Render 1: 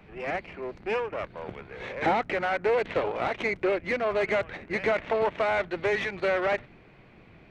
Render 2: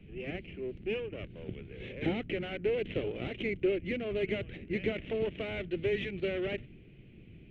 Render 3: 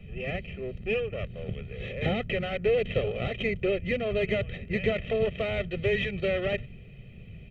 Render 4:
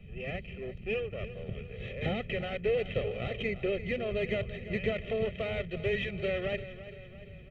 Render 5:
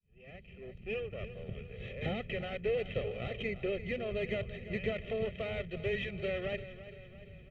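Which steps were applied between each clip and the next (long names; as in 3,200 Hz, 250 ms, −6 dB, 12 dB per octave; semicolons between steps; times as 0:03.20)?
drawn EQ curve 120 Hz 0 dB, 380 Hz −4 dB, 970 Hz −29 dB, 1,700 Hz −18 dB, 3,000 Hz −3 dB, 4,700 Hz −23 dB, 7,900 Hz −21 dB; level +3 dB
comb filter 1.6 ms, depth 84%; level +5 dB
repeating echo 341 ms, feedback 53%, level −14 dB; level −4.5 dB
fade in at the beginning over 1.07 s; level −3.5 dB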